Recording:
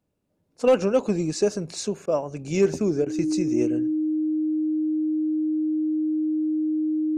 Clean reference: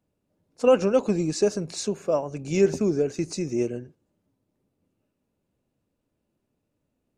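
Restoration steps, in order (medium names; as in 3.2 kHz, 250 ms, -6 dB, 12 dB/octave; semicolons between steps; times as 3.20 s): clip repair -11 dBFS; band-stop 310 Hz, Q 30; interpolate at 2.06/3.05 s, 12 ms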